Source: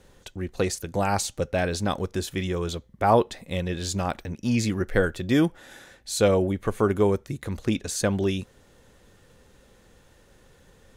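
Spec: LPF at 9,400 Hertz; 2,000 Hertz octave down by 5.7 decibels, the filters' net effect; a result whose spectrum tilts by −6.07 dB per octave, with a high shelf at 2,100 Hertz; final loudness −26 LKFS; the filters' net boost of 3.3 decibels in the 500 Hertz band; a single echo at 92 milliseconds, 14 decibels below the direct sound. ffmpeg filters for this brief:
ffmpeg -i in.wav -af "lowpass=9400,equalizer=frequency=500:width_type=o:gain=4.5,equalizer=frequency=2000:width_type=o:gain=-5.5,highshelf=frequency=2100:gain=-5,aecho=1:1:92:0.2,volume=-2dB" out.wav

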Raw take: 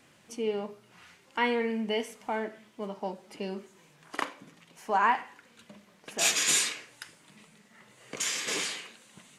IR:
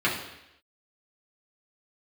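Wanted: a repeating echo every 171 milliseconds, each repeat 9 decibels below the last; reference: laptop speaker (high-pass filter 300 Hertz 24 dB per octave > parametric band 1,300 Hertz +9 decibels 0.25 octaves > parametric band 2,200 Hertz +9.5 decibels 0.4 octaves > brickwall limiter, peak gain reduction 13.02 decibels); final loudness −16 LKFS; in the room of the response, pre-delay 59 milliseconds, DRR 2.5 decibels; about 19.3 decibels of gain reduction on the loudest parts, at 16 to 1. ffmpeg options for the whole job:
-filter_complex "[0:a]acompressor=threshold=-40dB:ratio=16,aecho=1:1:171|342|513|684:0.355|0.124|0.0435|0.0152,asplit=2[link_01][link_02];[1:a]atrim=start_sample=2205,adelay=59[link_03];[link_02][link_03]afir=irnorm=-1:irlink=0,volume=-17dB[link_04];[link_01][link_04]amix=inputs=2:normalize=0,highpass=frequency=300:width=0.5412,highpass=frequency=300:width=1.3066,equalizer=frequency=1300:width_type=o:width=0.25:gain=9,equalizer=frequency=2200:width_type=o:width=0.4:gain=9.5,volume=27.5dB,alimiter=limit=-4dB:level=0:latency=1"

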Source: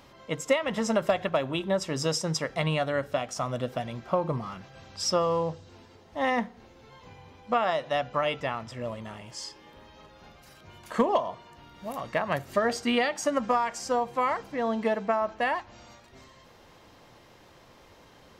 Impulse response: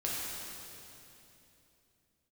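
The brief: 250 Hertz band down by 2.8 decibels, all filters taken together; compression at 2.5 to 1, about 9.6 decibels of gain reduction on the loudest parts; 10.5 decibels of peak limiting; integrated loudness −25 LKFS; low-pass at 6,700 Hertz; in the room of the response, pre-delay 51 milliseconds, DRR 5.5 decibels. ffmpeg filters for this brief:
-filter_complex "[0:a]lowpass=6700,equalizer=frequency=250:width_type=o:gain=-3.5,acompressor=threshold=-35dB:ratio=2.5,alimiter=level_in=6dB:limit=-24dB:level=0:latency=1,volume=-6dB,asplit=2[link_01][link_02];[1:a]atrim=start_sample=2205,adelay=51[link_03];[link_02][link_03]afir=irnorm=-1:irlink=0,volume=-11dB[link_04];[link_01][link_04]amix=inputs=2:normalize=0,volume=15dB"

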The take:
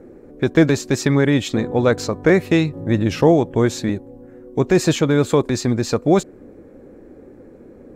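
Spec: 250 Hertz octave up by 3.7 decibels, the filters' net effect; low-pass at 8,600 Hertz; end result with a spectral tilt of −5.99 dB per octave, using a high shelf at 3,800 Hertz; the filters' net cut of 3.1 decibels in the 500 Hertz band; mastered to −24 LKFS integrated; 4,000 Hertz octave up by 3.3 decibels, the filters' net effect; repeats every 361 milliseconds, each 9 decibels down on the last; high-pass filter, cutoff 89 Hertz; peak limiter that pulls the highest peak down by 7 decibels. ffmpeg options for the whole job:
ffmpeg -i in.wav -af "highpass=89,lowpass=8600,equalizer=frequency=250:width_type=o:gain=8,equalizer=frequency=500:width_type=o:gain=-8,highshelf=frequency=3800:gain=-3,equalizer=frequency=4000:width_type=o:gain=6,alimiter=limit=-8dB:level=0:latency=1,aecho=1:1:361|722|1083|1444:0.355|0.124|0.0435|0.0152,volume=-5.5dB" out.wav

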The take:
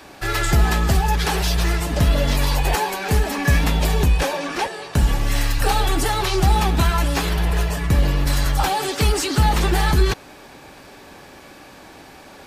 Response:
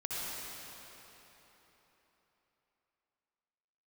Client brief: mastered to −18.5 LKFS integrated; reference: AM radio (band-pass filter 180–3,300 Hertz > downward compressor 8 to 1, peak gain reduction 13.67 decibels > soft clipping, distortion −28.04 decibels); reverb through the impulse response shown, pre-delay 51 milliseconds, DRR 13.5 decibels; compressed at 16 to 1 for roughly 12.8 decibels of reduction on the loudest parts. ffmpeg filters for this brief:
-filter_complex "[0:a]acompressor=threshold=-24dB:ratio=16,asplit=2[link_01][link_02];[1:a]atrim=start_sample=2205,adelay=51[link_03];[link_02][link_03]afir=irnorm=-1:irlink=0,volume=-18dB[link_04];[link_01][link_04]amix=inputs=2:normalize=0,highpass=180,lowpass=3300,acompressor=threshold=-38dB:ratio=8,asoftclip=threshold=-28.5dB,volume=23.5dB"

